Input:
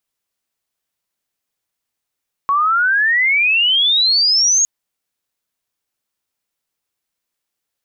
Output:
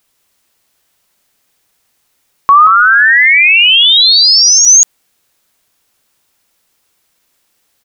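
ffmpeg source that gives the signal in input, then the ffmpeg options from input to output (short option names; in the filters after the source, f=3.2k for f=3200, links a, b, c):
-f lavfi -i "aevalsrc='pow(10,(-12+1.5*t/2.16)/20)*sin(2*PI*1100*2.16/log(6700/1100)*(exp(log(6700/1100)*t/2.16)-1))':d=2.16:s=44100"
-filter_complex "[0:a]asplit=2[a][b];[b]aecho=0:1:181:0.531[c];[a][c]amix=inputs=2:normalize=0,alimiter=level_in=18dB:limit=-1dB:release=50:level=0:latency=1"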